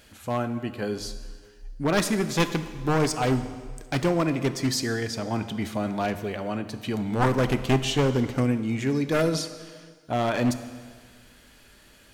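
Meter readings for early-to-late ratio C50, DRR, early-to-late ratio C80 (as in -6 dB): 11.5 dB, 10.0 dB, 13.0 dB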